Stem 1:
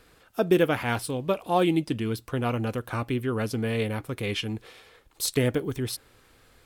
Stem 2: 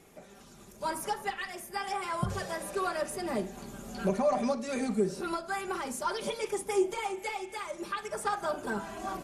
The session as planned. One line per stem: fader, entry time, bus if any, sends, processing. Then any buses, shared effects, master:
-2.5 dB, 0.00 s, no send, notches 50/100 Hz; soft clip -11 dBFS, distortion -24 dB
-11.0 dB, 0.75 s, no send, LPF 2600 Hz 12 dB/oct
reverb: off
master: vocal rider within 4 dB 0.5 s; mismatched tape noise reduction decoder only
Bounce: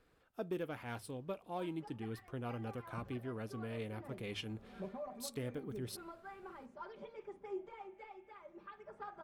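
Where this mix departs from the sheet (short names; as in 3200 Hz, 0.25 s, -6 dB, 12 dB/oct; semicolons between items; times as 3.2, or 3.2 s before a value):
stem 1 -2.5 dB -> -14.5 dB; stem 2 -11.0 dB -> -19.5 dB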